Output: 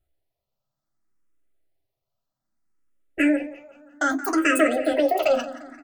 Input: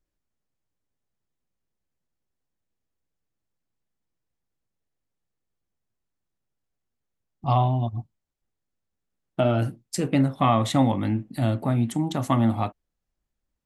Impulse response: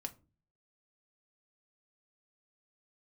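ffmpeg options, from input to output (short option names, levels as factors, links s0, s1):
-filter_complex "[0:a]highshelf=f=8600:g=8,bandreject=f=220.3:t=h:w=4,bandreject=f=440.6:t=h:w=4,bandreject=f=660.9:t=h:w=4,bandreject=f=881.2:t=h:w=4,bandreject=f=1101.5:t=h:w=4,bandreject=f=1321.8:t=h:w=4,bandreject=f=1542.1:t=h:w=4,bandreject=f=1762.4:t=h:w=4,bandreject=f=1982.7:t=h:w=4,bandreject=f=2203:t=h:w=4,bandreject=f=2423.3:t=h:w=4,bandreject=f=2643.6:t=h:w=4,bandreject=f=2863.9:t=h:w=4,bandreject=f=3084.2:t=h:w=4,bandreject=f=3304.5:t=h:w=4,bandreject=f=3524.8:t=h:w=4,bandreject=f=3745.1:t=h:w=4,bandreject=f=3965.4:t=h:w=4,bandreject=f=4185.7:t=h:w=4,bandreject=f=4406:t=h:w=4,bandreject=f=4626.3:t=h:w=4,bandreject=f=4846.6:t=h:w=4,bandreject=f=5066.9:t=h:w=4,bandreject=f=5287.2:t=h:w=4,asplit=2[s0][s1];[s1]alimiter=limit=0.141:level=0:latency=1:release=44,volume=1.26[s2];[s0][s2]amix=inputs=2:normalize=0,asplit=2[s3][s4];[s4]adelay=407,lowpass=f=3200:p=1,volume=0.188,asplit=2[s5][s6];[s6]adelay=407,lowpass=f=3200:p=1,volume=0.54,asplit=2[s7][s8];[s8]adelay=407,lowpass=f=3200:p=1,volume=0.54,asplit=2[s9][s10];[s10]adelay=407,lowpass=f=3200:p=1,volume=0.54,asplit=2[s11][s12];[s12]adelay=407,lowpass=f=3200:p=1,volume=0.54[s13];[s3][s5][s7][s9][s11][s13]amix=inputs=6:normalize=0[s14];[1:a]atrim=start_sample=2205[s15];[s14][s15]afir=irnorm=-1:irlink=0,asetrate=103194,aresample=44100,asplit=2[s16][s17];[s17]afreqshift=0.63[s18];[s16][s18]amix=inputs=2:normalize=1"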